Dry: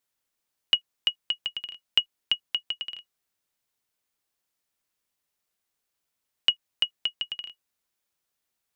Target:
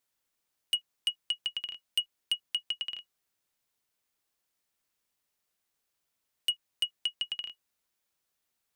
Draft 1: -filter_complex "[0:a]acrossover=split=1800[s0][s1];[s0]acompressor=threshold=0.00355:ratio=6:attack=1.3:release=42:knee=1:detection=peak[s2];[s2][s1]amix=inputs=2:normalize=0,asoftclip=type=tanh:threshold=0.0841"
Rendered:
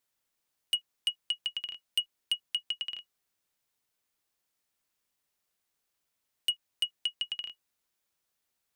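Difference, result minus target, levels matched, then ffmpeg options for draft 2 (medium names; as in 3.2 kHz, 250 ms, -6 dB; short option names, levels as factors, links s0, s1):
compression: peak gain reduction +5.5 dB
-filter_complex "[0:a]acrossover=split=1800[s0][s1];[s0]acompressor=threshold=0.0075:ratio=6:attack=1.3:release=42:knee=1:detection=peak[s2];[s2][s1]amix=inputs=2:normalize=0,asoftclip=type=tanh:threshold=0.0841"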